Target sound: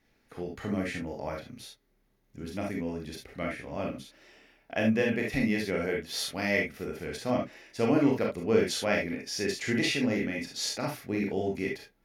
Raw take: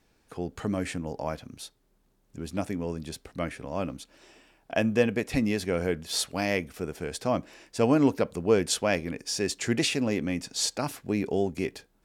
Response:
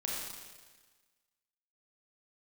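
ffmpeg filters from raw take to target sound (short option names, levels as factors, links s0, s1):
-filter_complex "[0:a]equalizer=f=1000:t=o:w=0.33:g=-4,equalizer=f=2000:t=o:w=0.33:g=8,equalizer=f=8000:t=o:w=0.33:g=-12[s0];[1:a]atrim=start_sample=2205,atrim=end_sample=3528[s1];[s0][s1]afir=irnorm=-1:irlink=0,volume=0.708"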